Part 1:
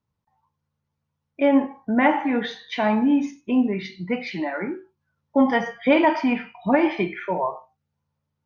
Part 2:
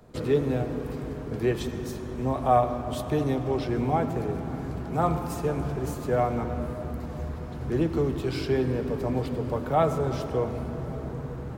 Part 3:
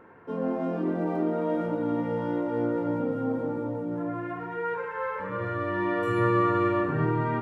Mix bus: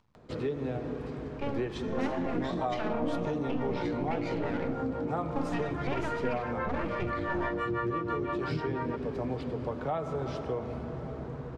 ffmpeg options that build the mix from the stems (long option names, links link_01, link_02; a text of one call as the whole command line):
ffmpeg -i stem1.wav -i stem2.wav -i stem3.wav -filter_complex "[0:a]dynaudnorm=framelen=220:gausssize=17:maxgain=11.5dB,aeval=exprs='max(val(0),0)':channel_layout=same,acompressor=threshold=-19dB:ratio=6,volume=-11dB[link_01];[1:a]adelay=150,volume=-3dB[link_02];[2:a]acrossover=split=480[link_03][link_04];[link_03]aeval=exprs='val(0)*(1-1/2+1/2*cos(2*PI*6*n/s))':channel_layout=same[link_05];[link_04]aeval=exprs='val(0)*(1-1/2-1/2*cos(2*PI*6*n/s))':channel_layout=same[link_06];[link_05][link_06]amix=inputs=2:normalize=0,adelay=1550,volume=3dB[link_07];[link_02][link_07]amix=inputs=2:normalize=0,lowshelf=frequency=150:gain=-4.5,acompressor=threshold=-28dB:ratio=10,volume=0dB[link_08];[link_01][link_08]amix=inputs=2:normalize=0,lowpass=4900,acompressor=mode=upward:threshold=-51dB:ratio=2.5" out.wav